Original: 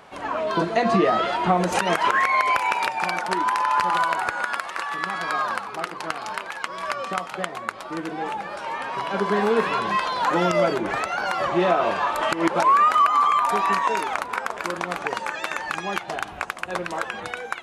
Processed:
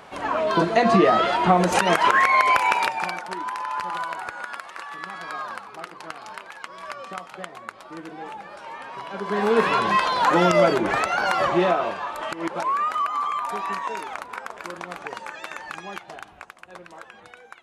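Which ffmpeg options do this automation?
ffmpeg -i in.wav -af "volume=13dB,afade=type=out:start_time=2.75:duration=0.48:silence=0.316228,afade=type=in:start_time=9.22:duration=0.44:silence=0.298538,afade=type=out:start_time=11.41:duration=0.56:silence=0.316228,afade=type=out:start_time=15.74:duration=0.81:silence=0.421697" out.wav

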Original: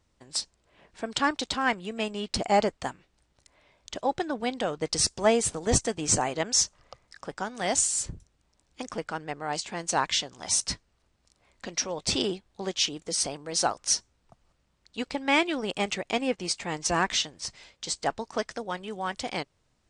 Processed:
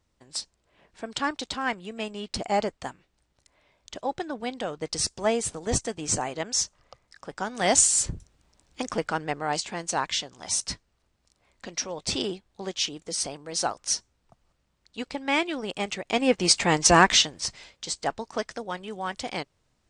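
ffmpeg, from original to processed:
ffmpeg -i in.wav -af "volume=18dB,afade=type=in:start_time=7.26:duration=0.42:silence=0.398107,afade=type=out:start_time=9.26:duration=0.7:silence=0.446684,afade=type=in:start_time=16.05:duration=0.54:silence=0.237137,afade=type=out:start_time=16.59:duration=1.27:silence=0.281838" out.wav

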